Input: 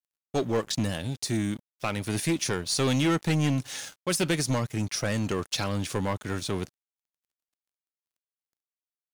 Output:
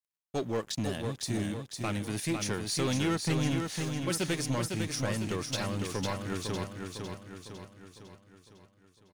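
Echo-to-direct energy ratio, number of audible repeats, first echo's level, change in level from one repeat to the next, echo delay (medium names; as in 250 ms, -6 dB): -3.5 dB, 6, -5.0 dB, -5.5 dB, 504 ms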